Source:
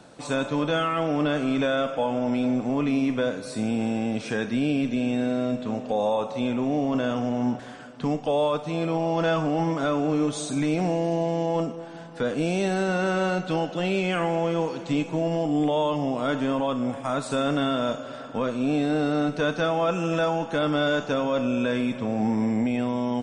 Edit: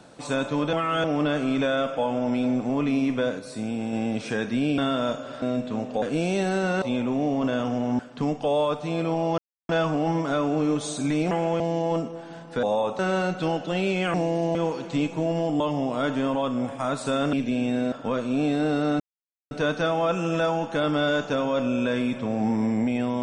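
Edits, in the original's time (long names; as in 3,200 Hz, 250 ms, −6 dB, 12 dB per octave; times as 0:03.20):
0:00.73–0:01.04: reverse
0:03.39–0:03.93: clip gain −3.5 dB
0:04.78–0:05.37: swap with 0:17.58–0:18.22
0:05.97–0:06.33: swap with 0:12.27–0:13.07
0:07.50–0:07.82: remove
0:09.21: splice in silence 0.31 s
0:10.83–0:11.24: swap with 0:14.22–0:14.51
0:15.56–0:15.85: remove
0:19.30: splice in silence 0.51 s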